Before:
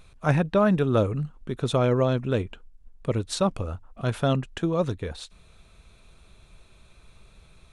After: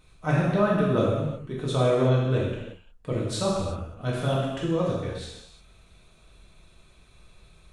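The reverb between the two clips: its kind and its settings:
reverb whose tail is shaped and stops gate 390 ms falling, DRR −5.5 dB
level −7 dB

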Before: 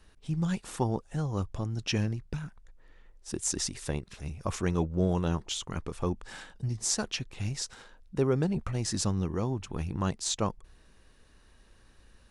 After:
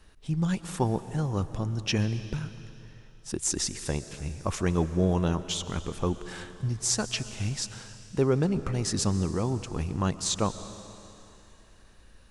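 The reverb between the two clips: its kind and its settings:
comb and all-pass reverb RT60 2.9 s, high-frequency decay 1×, pre-delay 90 ms, DRR 12.5 dB
level +2.5 dB

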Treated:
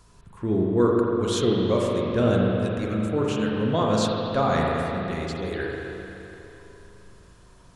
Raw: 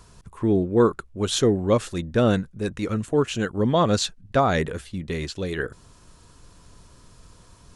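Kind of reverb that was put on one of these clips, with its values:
spring reverb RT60 3.2 s, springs 37/42 ms, chirp 45 ms, DRR −2.5 dB
level −5.5 dB

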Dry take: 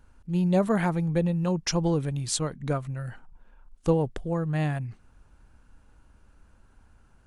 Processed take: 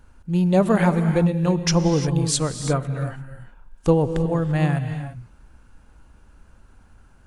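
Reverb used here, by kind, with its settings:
reverb whose tail is shaped and stops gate 370 ms rising, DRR 8.5 dB
level +5.5 dB

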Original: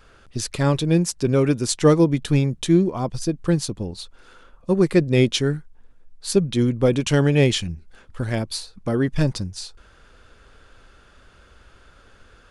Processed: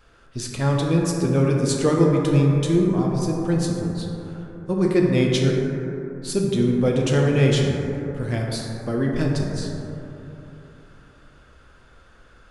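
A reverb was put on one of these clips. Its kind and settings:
dense smooth reverb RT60 3.4 s, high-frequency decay 0.25×, DRR −1.5 dB
level −4.5 dB

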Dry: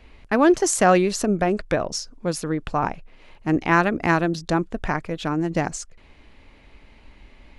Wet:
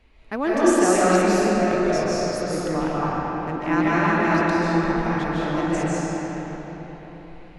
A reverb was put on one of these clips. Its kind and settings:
comb and all-pass reverb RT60 4.3 s, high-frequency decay 0.65×, pre-delay 110 ms, DRR −9 dB
level −8.5 dB

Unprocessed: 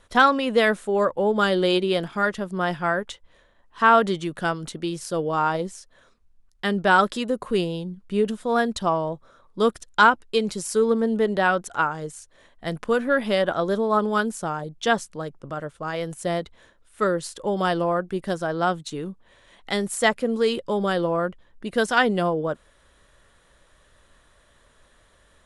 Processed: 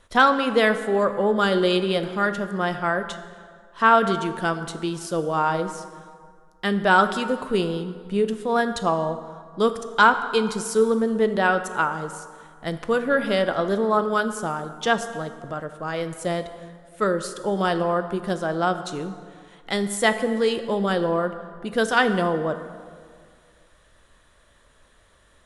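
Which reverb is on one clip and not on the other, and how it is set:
dense smooth reverb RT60 2 s, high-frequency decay 0.6×, DRR 9 dB

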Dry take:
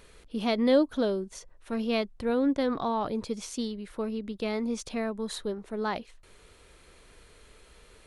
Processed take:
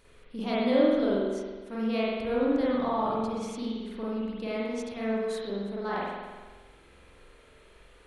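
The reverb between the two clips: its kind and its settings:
spring reverb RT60 1.4 s, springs 45 ms, chirp 75 ms, DRR −7.5 dB
level −7.5 dB

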